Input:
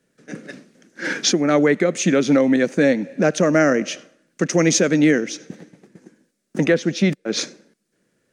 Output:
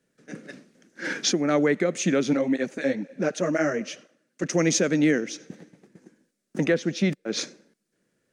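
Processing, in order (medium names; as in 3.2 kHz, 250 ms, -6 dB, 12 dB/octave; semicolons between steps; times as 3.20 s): 2.33–4.44 s: cancelling through-zero flanger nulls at 2 Hz, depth 7.2 ms; trim -5.5 dB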